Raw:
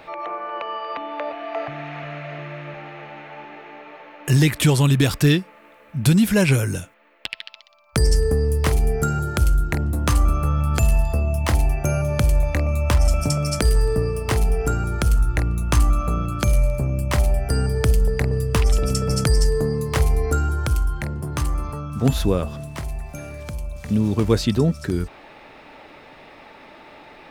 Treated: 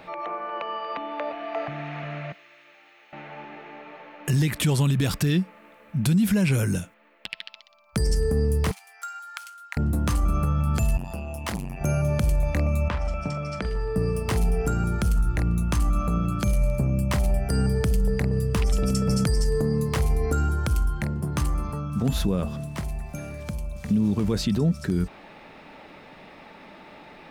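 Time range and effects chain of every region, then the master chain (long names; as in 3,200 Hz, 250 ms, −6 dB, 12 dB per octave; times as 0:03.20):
0:02.32–0:03.13: high-pass with resonance 270 Hz, resonance Q 2.1 + first difference
0:08.71–0:09.77: running median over 3 samples + Bessel high-pass filter 1,600 Hz, order 8 + high-shelf EQ 3,600 Hz −8.5 dB
0:10.97–0:11.81: low-shelf EQ 390 Hz −9.5 dB + saturating transformer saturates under 770 Hz
0:12.88–0:13.96: low-pass filter 2,600 Hz + low-shelf EQ 470 Hz −10 dB + double-tracking delay 43 ms −14 dB
whole clip: parametric band 190 Hz +9 dB 0.52 octaves; brickwall limiter −12 dBFS; level −2.5 dB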